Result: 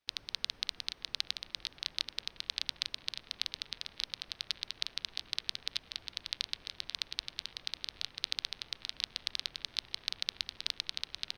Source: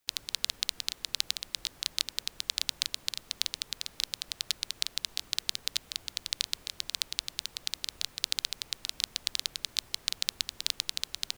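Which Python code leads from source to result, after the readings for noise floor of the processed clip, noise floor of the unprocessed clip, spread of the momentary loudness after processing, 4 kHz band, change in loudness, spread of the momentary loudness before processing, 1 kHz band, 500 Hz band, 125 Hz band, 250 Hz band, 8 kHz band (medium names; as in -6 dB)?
-61 dBFS, -57 dBFS, 5 LU, -4.0 dB, -4.5 dB, 5 LU, -3.0 dB, -3.0 dB, -3.0 dB, -3.0 dB, -13.0 dB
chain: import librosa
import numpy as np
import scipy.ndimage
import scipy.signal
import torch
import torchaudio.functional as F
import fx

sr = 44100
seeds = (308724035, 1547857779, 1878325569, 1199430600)

p1 = scipy.signal.savgol_filter(x, 15, 4, mode='constant')
p2 = p1 + fx.echo_wet_bandpass(p1, sr, ms=579, feedback_pct=81, hz=1300.0, wet_db=-16.0, dry=0)
y = p2 * 10.0 ** (-3.0 / 20.0)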